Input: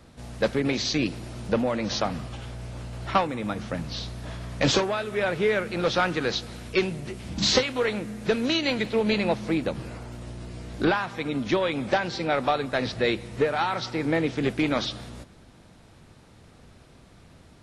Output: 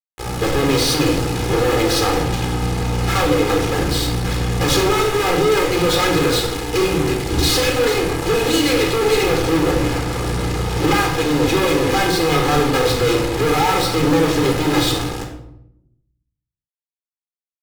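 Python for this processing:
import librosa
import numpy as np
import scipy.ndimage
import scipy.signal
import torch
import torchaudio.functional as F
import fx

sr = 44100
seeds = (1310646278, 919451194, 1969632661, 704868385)

y = fx.lower_of_two(x, sr, delay_ms=2.4)
y = fx.small_body(y, sr, hz=(300.0, 490.0), ring_ms=85, db=8)
y = fx.fuzz(y, sr, gain_db=45.0, gate_db=-37.0)
y = fx.room_shoebox(y, sr, seeds[0], volume_m3=1900.0, walls='furnished', distance_m=4.0)
y = y * librosa.db_to_amplitude(-6.5)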